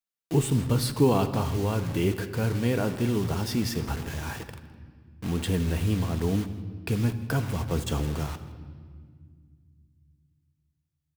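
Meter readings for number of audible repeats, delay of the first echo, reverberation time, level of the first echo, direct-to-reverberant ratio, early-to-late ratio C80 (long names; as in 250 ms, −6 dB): 1, 163 ms, 1.9 s, −19.5 dB, 7.5 dB, 12.5 dB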